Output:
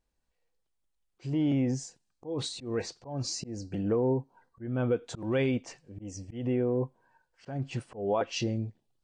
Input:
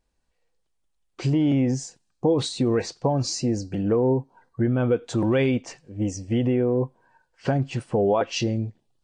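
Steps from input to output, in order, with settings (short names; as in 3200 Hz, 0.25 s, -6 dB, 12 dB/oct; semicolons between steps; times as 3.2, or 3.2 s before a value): auto swell 0.209 s; gain -6 dB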